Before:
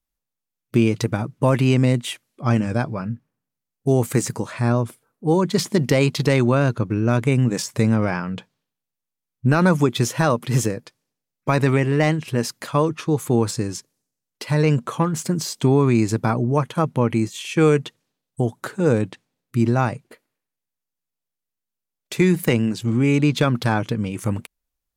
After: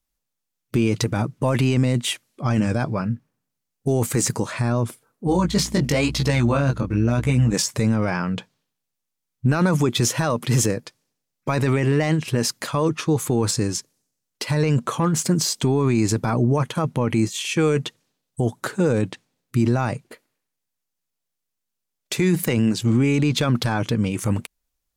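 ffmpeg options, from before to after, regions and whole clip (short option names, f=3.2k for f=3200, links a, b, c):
-filter_complex "[0:a]asettb=1/sr,asplit=3[a][b][c];[a]atrim=end=5.274[d];[b]atrim=start=5.27:end=7.54,asetpts=PTS-STARTPTS,afade=t=in:d=0.004:c=qsin,afade=t=out:st=2.266:d=0.004:c=qsin,equalizer=f=390:t=o:w=0.22:g=-8,aeval=exprs='val(0)+0.02*(sin(2*PI*60*n/s)+sin(2*PI*2*60*n/s)/2+sin(2*PI*3*60*n/s)/3+sin(2*PI*4*60*n/s)/4+sin(2*PI*5*60*n/s)/5)':c=same,flanger=delay=15.5:depth=6.9:speed=1[e];[c]atrim=start=7.536[f];[d][e]acrossfade=d=0.004:c1=hsin:c2=qsin[g];[g][f]acrossfade=d=0.004:c1=qsin:c2=hsin,equalizer=f=6.3k:t=o:w=1.6:g=3,alimiter=limit=-13.5dB:level=0:latency=1:release=11,volume=3dB"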